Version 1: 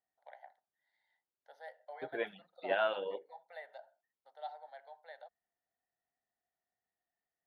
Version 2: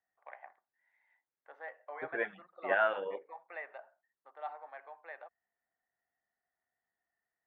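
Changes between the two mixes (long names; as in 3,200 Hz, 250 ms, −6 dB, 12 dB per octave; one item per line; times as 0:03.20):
first voice: remove phaser with its sweep stopped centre 1,700 Hz, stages 8
master: add low-pass with resonance 1,800 Hz, resonance Q 2.3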